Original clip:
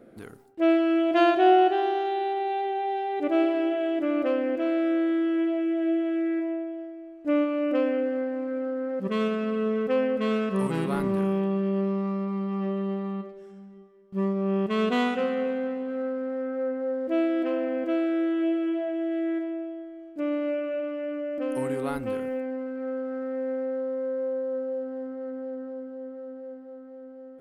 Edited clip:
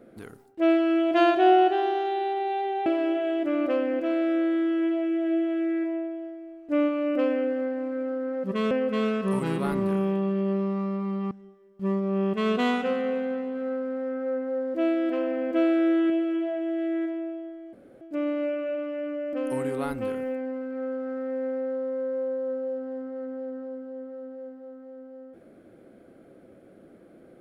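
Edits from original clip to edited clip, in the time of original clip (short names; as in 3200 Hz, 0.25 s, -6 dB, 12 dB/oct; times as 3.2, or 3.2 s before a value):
2.86–3.42 cut
9.27–9.99 cut
12.59–13.64 cut
17.87–18.43 gain +3.5 dB
20.06 insert room tone 0.28 s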